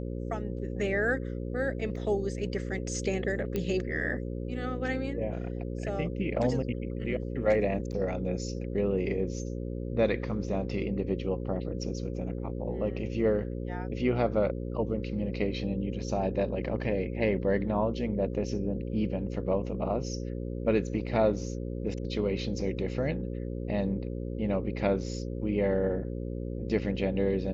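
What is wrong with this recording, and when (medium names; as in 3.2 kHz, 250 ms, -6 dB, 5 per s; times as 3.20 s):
buzz 60 Hz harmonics 9 -35 dBFS
1.96 s: dropout 3 ms
3.56 s: pop -18 dBFS
7.92–7.93 s: dropout 8.5 ms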